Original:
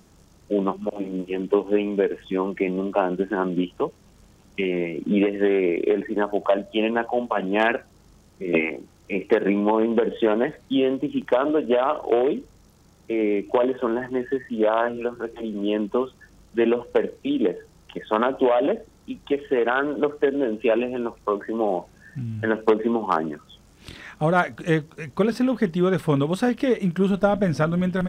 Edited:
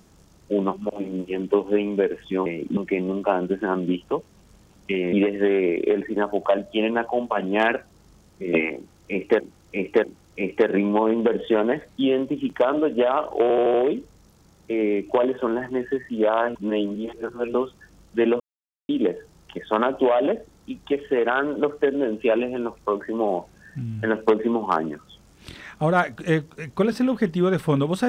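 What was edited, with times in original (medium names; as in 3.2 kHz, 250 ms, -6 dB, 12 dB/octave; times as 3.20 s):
4.82–5.13 s: move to 2.46 s
8.76–9.40 s: loop, 3 plays
12.14 s: stutter 0.08 s, 5 plays
14.95–15.94 s: reverse
16.80–17.29 s: mute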